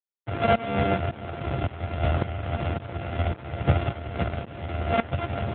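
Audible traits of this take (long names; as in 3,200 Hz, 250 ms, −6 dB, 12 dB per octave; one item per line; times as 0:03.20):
a buzz of ramps at a fixed pitch in blocks of 64 samples
tremolo saw up 1.8 Hz, depth 90%
a quantiser's noise floor 8 bits, dither none
AMR narrowband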